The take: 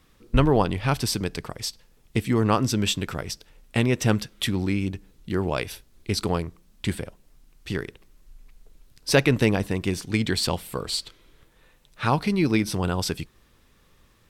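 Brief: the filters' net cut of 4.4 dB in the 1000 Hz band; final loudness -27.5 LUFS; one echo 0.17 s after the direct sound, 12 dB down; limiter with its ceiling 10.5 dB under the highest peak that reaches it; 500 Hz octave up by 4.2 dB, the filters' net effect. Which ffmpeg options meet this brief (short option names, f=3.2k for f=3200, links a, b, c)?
-af "equalizer=f=500:t=o:g=7,equalizer=f=1k:t=o:g=-8.5,alimiter=limit=-14dB:level=0:latency=1,aecho=1:1:170:0.251,volume=-0.5dB"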